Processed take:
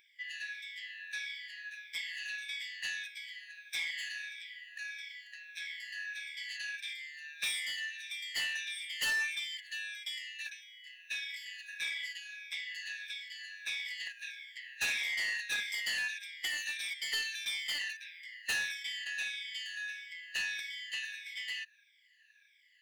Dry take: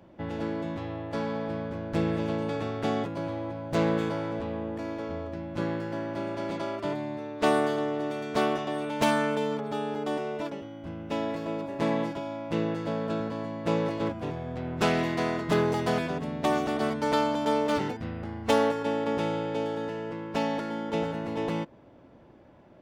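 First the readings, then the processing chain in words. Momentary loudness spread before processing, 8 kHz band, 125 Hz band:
9 LU, +3.5 dB, under -35 dB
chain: moving spectral ripple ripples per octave 1.6, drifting -1.6 Hz, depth 19 dB; brick-wall FIR high-pass 1600 Hz; soft clip -30 dBFS, distortion -11 dB; gain +2 dB

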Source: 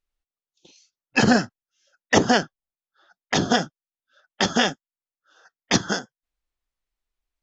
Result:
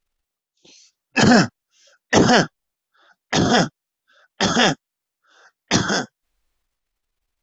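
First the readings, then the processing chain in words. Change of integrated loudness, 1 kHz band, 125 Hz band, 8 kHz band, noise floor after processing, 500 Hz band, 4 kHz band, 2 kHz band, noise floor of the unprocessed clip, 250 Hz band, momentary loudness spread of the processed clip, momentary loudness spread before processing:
+4.0 dB, +4.0 dB, +6.5 dB, n/a, -84 dBFS, +4.5 dB, +4.0 dB, +3.5 dB, under -85 dBFS, +4.5 dB, 11 LU, 10 LU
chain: transient shaper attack -5 dB, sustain +7 dB; gain +5 dB

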